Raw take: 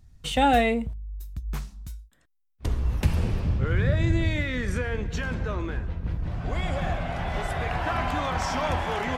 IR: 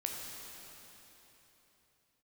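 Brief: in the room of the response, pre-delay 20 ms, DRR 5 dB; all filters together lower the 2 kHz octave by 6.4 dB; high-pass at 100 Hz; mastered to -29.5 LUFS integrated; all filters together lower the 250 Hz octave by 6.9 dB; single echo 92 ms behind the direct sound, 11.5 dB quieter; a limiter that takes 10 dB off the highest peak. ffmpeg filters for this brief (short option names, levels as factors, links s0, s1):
-filter_complex "[0:a]highpass=100,equalizer=f=250:t=o:g=-9,equalizer=f=2000:t=o:g=-8,alimiter=limit=0.075:level=0:latency=1,aecho=1:1:92:0.266,asplit=2[s0][s1];[1:a]atrim=start_sample=2205,adelay=20[s2];[s1][s2]afir=irnorm=-1:irlink=0,volume=0.447[s3];[s0][s3]amix=inputs=2:normalize=0,volume=1.41"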